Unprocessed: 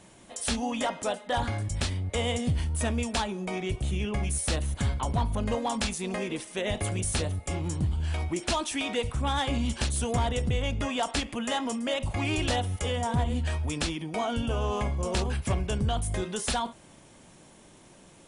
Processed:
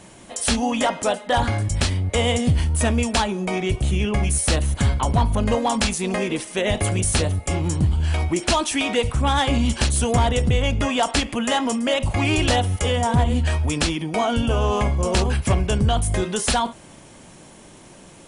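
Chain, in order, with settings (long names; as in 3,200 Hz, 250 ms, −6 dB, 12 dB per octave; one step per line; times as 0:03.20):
notch filter 3,600 Hz, Q 30
level +8.5 dB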